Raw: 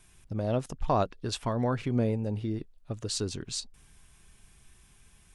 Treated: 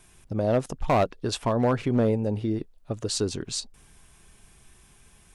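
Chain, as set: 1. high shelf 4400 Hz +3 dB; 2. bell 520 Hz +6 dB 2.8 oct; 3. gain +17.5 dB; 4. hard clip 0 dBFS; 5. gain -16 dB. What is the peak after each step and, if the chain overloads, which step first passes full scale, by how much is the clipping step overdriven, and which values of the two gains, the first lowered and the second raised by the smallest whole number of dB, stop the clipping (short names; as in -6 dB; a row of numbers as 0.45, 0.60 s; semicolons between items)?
-15.0, -9.0, +8.5, 0.0, -16.0 dBFS; step 3, 8.5 dB; step 3 +8.5 dB, step 5 -7 dB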